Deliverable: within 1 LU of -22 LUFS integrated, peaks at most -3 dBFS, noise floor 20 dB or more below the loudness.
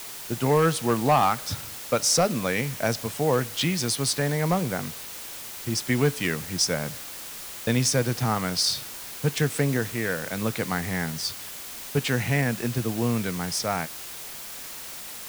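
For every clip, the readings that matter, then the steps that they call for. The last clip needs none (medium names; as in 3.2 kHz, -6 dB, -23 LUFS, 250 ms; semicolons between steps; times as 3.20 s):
clipped samples 0.2%; clipping level -13.5 dBFS; noise floor -39 dBFS; noise floor target -46 dBFS; loudness -26.0 LUFS; peak level -13.5 dBFS; loudness target -22.0 LUFS
-> clip repair -13.5 dBFS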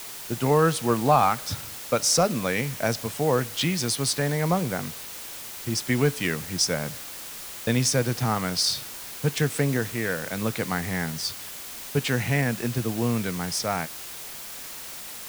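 clipped samples 0.0%; noise floor -39 dBFS; noise floor target -46 dBFS
-> noise reduction 7 dB, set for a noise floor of -39 dBFS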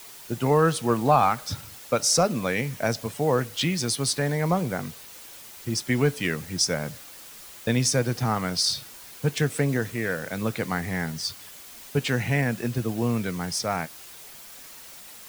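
noise floor -45 dBFS; noise floor target -46 dBFS
-> noise reduction 6 dB, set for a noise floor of -45 dBFS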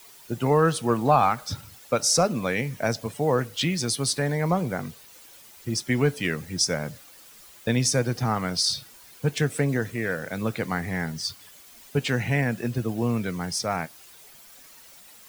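noise floor -50 dBFS; loudness -25.5 LUFS; peak level -7.5 dBFS; loudness target -22.0 LUFS
-> trim +3.5 dB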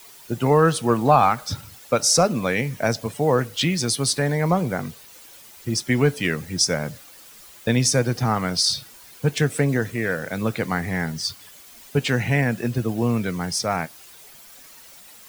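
loudness -22.0 LUFS; peak level -4.0 dBFS; noise floor -46 dBFS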